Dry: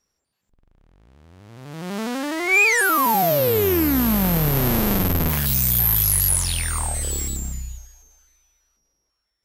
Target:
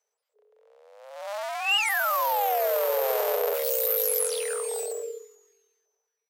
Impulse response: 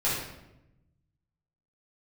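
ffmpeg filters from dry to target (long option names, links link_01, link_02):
-af "afreqshift=400,atempo=1.5,lowshelf=frequency=370:gain=5,volume=-7dB"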